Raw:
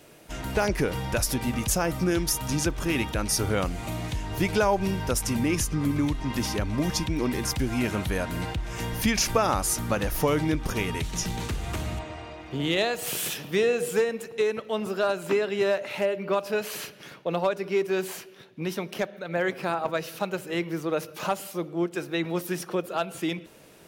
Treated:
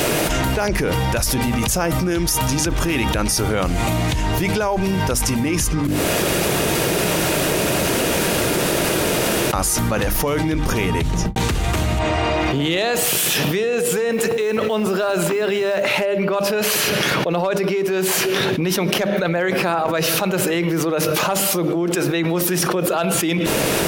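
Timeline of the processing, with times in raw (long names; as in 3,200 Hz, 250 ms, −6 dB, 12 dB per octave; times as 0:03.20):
0:05.87–0:09.53: fill with room tone
0:10.61–0:11.36: fade out and dull
0:14.12–0:15.88: floating-point word with a short mantissa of 4 bits
whole clip: mains-hum notches 50/100/150/200/250/300 Hz; envelope flattener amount 100%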